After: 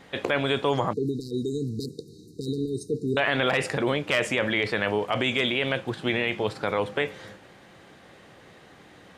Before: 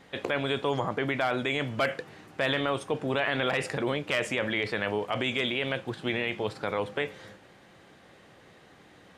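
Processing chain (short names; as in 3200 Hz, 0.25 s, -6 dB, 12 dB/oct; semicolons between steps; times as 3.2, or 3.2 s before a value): 0.93–3.17 brick-wall FIR band-stop 480–3700 Hz; gain +4 dB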